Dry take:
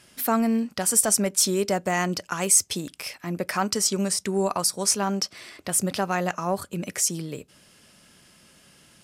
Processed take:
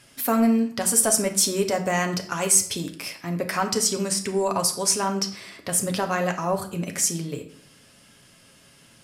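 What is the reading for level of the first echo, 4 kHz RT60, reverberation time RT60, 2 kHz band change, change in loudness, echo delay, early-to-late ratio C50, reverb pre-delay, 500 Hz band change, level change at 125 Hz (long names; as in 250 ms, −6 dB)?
no echo audible, 0.50 s, 0.55 s, +1.0 dB, +1.0 dB, no echo audible, 11.0 dB, 7 ms, +2.0 dB, +1.0 dB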